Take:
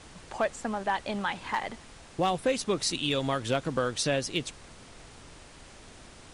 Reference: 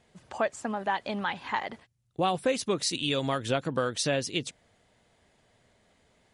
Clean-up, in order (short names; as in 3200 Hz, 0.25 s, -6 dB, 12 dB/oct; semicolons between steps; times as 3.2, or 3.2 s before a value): clip repair -17.5 dBFS; noise print and reduce 16 dB